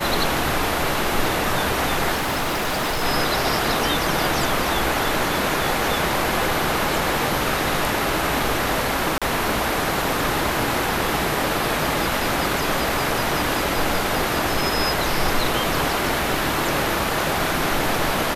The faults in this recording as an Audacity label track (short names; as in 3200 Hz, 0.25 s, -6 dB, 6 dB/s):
2.140000	3.040000	clipped -19.5 dBFS
9.180000	9.220000	gap 36 ms